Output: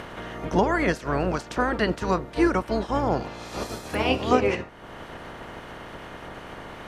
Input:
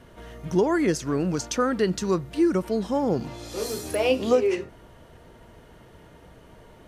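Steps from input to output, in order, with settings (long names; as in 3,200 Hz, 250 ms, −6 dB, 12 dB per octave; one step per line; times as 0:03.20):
ceiling on every frequency bin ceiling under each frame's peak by 20 dB
upward compression, threshold −27 dBFS
low-pass filter 1,400 Hz 6 dB per octave
level +1.5 dB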